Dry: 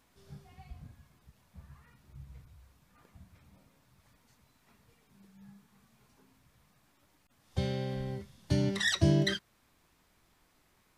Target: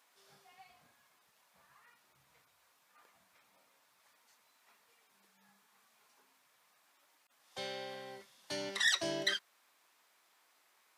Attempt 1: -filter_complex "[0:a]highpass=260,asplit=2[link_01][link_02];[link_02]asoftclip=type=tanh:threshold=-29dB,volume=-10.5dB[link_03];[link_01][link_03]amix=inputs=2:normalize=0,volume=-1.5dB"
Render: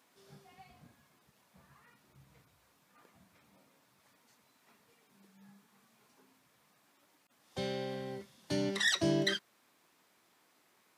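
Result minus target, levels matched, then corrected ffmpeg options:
250 Hz band +10.0 dB
-filter_complex "[0:a]highpass=670,asplit=2[link_01][link_02];[link_02]asoftclip=type=tanh:threshold=-29dB,volume=-10.5dB[link_03];[link_01][link_03]amix=inputs=2:normalize=0,volume=-1.5dB"

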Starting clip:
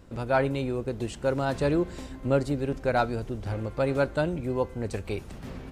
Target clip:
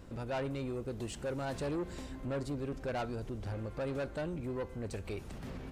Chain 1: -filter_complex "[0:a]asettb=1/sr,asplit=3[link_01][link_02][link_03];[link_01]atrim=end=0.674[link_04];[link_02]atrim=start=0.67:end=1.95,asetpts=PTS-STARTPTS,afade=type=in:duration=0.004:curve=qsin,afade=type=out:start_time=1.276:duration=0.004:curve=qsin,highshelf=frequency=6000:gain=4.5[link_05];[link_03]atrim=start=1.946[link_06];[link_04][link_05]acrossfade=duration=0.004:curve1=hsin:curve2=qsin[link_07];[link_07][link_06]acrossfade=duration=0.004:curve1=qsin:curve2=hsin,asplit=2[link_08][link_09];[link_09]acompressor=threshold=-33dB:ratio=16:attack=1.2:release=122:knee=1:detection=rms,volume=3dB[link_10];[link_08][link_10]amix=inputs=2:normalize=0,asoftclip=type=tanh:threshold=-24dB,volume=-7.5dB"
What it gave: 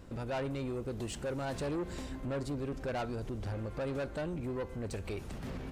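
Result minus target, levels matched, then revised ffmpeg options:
downward compressor: peak gain reduction −7.5 dB
-filter_complex "[0:a]asettb=1/sr,asplit=3[link_01][link_02][link_03];[link_01]atrim=end=0.674[link_04];[link_02]atrim=start=0.67:end=1.95,asetpts=PTS-STARTPTS,afade=type=in:duration=0.004:curve=qsin,afade=type=out:start_time=1.276:duration=0.004:curve=qsin,highshelf=frequency=6000:gain=4.5[link_05];[link_03]atrim=start=1.946[link_06];[link_04][link_05]acrossfade=duration=0.004:curve1=hsin:curve2=qsin[link_07];[link_07][link_06]acrossfade=duration=0.004:curve1=qsin:curve2=hsin,asplit=2[link_08][link_09];[link_09]acompressor=threshold=-41dB:ratio=16:attack=1.2:release=122:knee=1:detection=rms,volume=3dB[link_10];[link_08][link_10]amix=inputs=2:normalize=0,asoftclip=type=tanh:threshold=-24dB,volume=-7.5dB"

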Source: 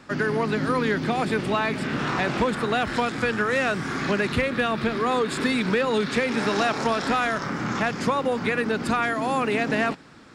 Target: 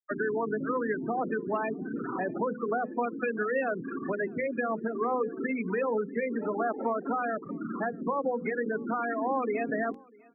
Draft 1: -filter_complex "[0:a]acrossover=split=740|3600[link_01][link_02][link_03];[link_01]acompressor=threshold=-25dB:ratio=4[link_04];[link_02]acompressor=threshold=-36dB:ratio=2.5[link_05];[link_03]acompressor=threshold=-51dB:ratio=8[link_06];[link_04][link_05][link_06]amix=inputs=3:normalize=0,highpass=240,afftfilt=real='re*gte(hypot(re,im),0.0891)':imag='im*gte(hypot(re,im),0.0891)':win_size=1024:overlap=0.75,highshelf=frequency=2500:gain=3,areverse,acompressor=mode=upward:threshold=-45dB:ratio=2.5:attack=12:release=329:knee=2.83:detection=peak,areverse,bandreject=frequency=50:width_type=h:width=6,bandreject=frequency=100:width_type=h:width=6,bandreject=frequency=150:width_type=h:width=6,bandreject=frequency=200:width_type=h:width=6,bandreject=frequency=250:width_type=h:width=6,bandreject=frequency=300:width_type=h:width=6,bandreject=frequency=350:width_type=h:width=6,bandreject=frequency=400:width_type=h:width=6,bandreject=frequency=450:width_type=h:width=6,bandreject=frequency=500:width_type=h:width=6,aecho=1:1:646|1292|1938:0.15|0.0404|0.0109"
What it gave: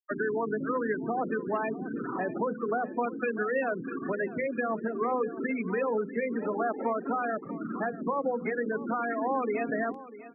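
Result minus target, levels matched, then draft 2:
echo-to-direct +10.5 dB
-filter_complex "[0:a]acrossover=split=740|3600[link_01][link_02][link_03];[link_01]acompressor=threshold=-25dB:ratio=4[link_04];[link_02]acompressor=threshold=-36dB:ratio=2.5[link_05];[link_03]acompressor=threshold=-51dB:ratio=8[link_06];[link_04][link_05][link_06]amix=inputs=3:normalize=0,highpass=240,afftfilt=real='re*gte(hypot(re,im),0.0891)':imag='im*gte(hypot(re,im),0.0891)':win_size=1024:overlap=0.75,highshelf=frequency=2500:gain=3,areverse,acompressor=mode=upward:threshold=-45dB:ratio=2.5:attack=12:release=329:knee=2.83:detection=peak,areverse,bandreject=frequency=50:width_type=h:width=6,bandreject=frequency=100:width_type=h:width=6,bandreject=frequency=150:width_type=h:width=6,bandreject=frequency=200:width_type=h:width=6,bandreject=frequency=250:width_type=h:width=6,bandreject=frequency=300:width_type=h:width=6,bandreject=frequency=350:width_type=h:width=6,bandreject=frequency=400:width_type=h:width=6,bandreject=frequency=450:width_type=h:width=6,bandreject=frequency=500:width_type=h:width=6,aecho=1:1:646|1292:0.0447|0.0121"

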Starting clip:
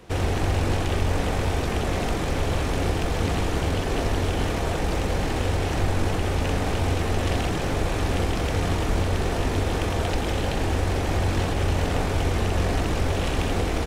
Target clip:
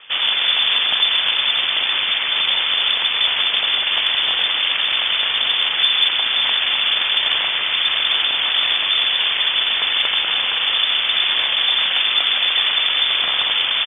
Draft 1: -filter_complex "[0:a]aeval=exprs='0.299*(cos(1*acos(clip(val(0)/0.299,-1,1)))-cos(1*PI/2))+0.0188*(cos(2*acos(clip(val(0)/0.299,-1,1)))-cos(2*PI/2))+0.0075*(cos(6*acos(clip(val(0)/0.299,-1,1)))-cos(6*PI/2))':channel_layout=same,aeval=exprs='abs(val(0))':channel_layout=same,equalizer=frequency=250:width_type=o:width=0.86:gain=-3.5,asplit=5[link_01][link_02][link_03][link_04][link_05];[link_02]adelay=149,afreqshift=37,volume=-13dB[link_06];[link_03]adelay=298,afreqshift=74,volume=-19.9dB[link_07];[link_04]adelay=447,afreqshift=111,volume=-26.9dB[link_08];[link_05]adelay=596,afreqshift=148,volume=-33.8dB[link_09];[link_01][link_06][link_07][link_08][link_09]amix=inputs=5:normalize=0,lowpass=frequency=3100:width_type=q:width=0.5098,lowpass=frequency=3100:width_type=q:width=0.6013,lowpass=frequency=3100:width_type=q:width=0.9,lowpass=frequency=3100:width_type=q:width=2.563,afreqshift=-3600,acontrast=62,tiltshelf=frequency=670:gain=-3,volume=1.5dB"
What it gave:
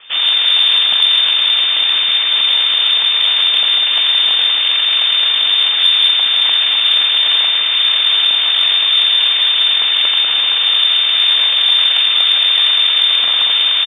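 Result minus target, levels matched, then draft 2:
125 Hz band −6.0 dB
-filter_complex "[0:a]aeval=exprs='0.299*(cos(1*acos(clip(val(0)/0.299,-1,1)))-cos(1*PI/2))+0.0188*(cos(2*acos(clip(val(0)/0.299,-1,1)))-cos(2*PI/2))+0.0075*(cos(6*acos(clip(val(0)/0.299,-1,1)))-cos(6*PI/2))':channel_layout=same,aeval=exprs='abs(val(0))':channel_layout=same,highpass=frequency=48:width=0.5412,highpass=frequency=48:width=1.3066,equalizer=frequency=250:width_type=o:width=0.86:gain=-3.5,asplit=5[link_01][link_02][link_03][link_04][link_05];[link_02]adelay=149,afreqshift=37,volume=-13dB[link_06];[link_03]adelay=298,afreqshift=74,volume=-19.9dB[link_07];[link_04]adelay=447,afreqshift=111,volume=-26.9dB[link_08];[link_05]adelay=596,afreqshift=148,volume=-33.8dB[link_09];[link_01][link_06][link_07][link_08][link_09]amix=inputs=5:normalize=0,lowpass=frequency=3100:width_type=q:width=0.5098,lowpass=frequency=3100:width_type=q:width=0.6013,lowpass=frequency=3100:width_type=q:width=0.9,lowpass=frequency=3100:width_type=q:width=2.563,afreqshift=-3600,acontrast=62,tiltshelf=frequency=670:gain=-3,volume=1.5dB"

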